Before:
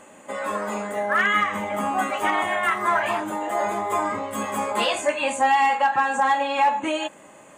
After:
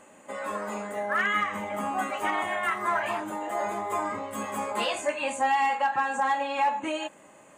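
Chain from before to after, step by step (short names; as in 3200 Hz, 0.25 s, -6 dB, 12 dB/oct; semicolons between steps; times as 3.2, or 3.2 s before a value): notch 3400 Hz, Q 25; gain -5.5 dB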